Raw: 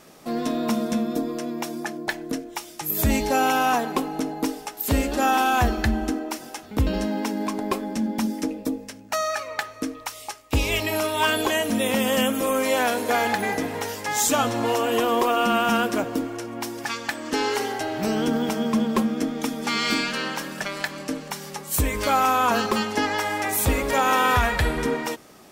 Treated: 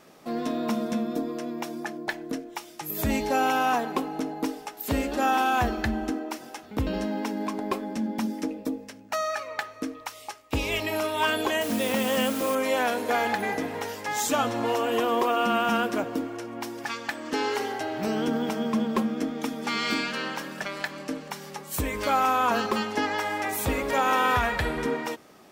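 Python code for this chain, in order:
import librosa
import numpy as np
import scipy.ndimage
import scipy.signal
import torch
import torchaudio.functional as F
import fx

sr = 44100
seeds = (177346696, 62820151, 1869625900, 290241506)

y = fx.peak_eq(x, sr, hz=10000.0, db=-6.0, octaves=1.9)
y = fx.quant_dither(y, sr, seeds[0], bits=6, dither='triangular', at=(11.61, 12.55))
y = fx.low_shelf(y, sr, hz=93.0, db=-8.5)
y = y * 10.0 ** (-2.5 / 20.0)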